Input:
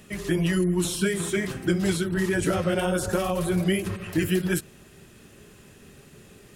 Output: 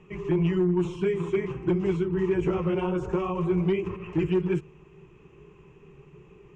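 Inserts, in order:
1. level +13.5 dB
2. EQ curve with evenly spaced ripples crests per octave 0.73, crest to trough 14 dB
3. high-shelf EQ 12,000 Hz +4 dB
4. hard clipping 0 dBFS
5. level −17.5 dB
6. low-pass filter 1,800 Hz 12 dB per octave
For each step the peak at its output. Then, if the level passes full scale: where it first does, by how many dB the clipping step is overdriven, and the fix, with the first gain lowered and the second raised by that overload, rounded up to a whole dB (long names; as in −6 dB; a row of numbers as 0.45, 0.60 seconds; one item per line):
+3.0, +5.5, +5.5, 0.0, −17.5, −17.5 dBFS
step 1, 5.5 dB
step 1 +7.5 dB, step 5 −11.5 dB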